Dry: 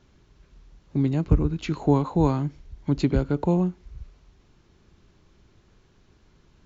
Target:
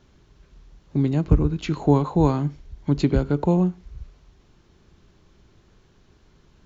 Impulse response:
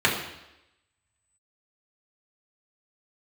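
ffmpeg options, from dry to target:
-filter_complex "[0:a]asplit=2[s0][s1];[1:a]atrim=start_sample=2205,atrim=end_sample=6174[s2];[s1][s2]afir=irnorm=-1:irlink=0,volume=0.02[s3];[s0][s3]amix=inputs=2:normalize=0,volume=1.26"

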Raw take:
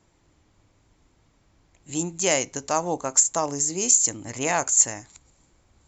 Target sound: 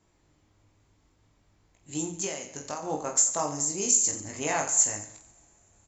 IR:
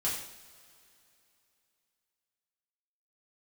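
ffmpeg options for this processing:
-filter_complex "[0:a]asplit=2[s0][s1];[1:a]atrim=start_sample=2205,asetrate=25137,aresample=44100[s2];[s1][s2]afir=irnorm=-1:irlink=0,volume=0.0447[s3];[s0][s3]amix=inputs=2:normalize=0,asettb=1/sr,asplit=3[s4][s5][s6];[s4]atrim=end=2.244[s7];[s5]atrim=start=2.24:end=2.83,asetpts=PTS-STARTPTS,afade=t=in:d=0.004:c=qsin,afade=t=out:st=0.586:d=0.004:c=qsin,acompressor=threshold=0.0447:ratio=10[s8];[s6]atrim=start=2.826[s9];[s7][s8]acrossfade=d=0.004:c1=hsin:c2=qsin[s10];[s10][s9]acrossfade=d=0.004:c1=qsin:c2=hsin,aecho=1:1:20|48|87.2|142.1|218.9:0.631|0.398|0.251|0.158|0.1,volume=0.473"

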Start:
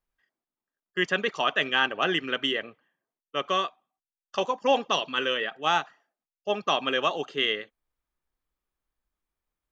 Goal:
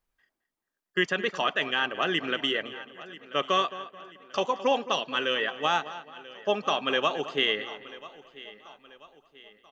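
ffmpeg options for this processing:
-filter_complex "[0:a]asplit=2[s0][s1];[s1]aecho=0:1:987|1974|2961:0.075|0.033|0.0145[s2];[s0][s2]amix=inputs=2:normalize=0,alimiter=limit=0.141:level=0:latency=1:release=493,asplit=2[s3][s4];[s4]adelay=217,lowpass=f=3300:p=1,volume=0.2,asplit=2[s5][s6];[s6]adelay=217,lowpass=f=3300:p=1,volume=0.4,asplit=2[s7][s8];[s8]adelay=217,lowpass=f=3300:p=1,volume=0.4,asplit=2[s9][s10];[s10]adelay=217,lowpass=f=3300:p=1,volume=0.4[s11];[s5][s7][s9][s11]amix=inputs=4:normalize=0[s12];[s3][s12]amix=inputs=2:normalize=0,volume=1.5"

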